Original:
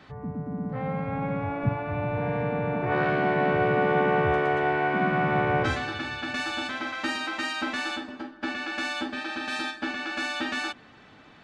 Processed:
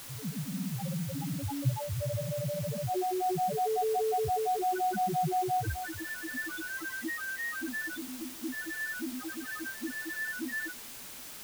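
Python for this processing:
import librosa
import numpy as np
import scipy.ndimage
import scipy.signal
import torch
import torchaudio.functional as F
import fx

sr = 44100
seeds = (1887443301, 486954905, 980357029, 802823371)

y = fx.spec_topn(x, sr, count=1)
y = fx.dmg_noise_colour(y, sr, seeds[0], colour='white', level_db=-50.0)
y = y * 10.0 ** (4.5 / 20.0)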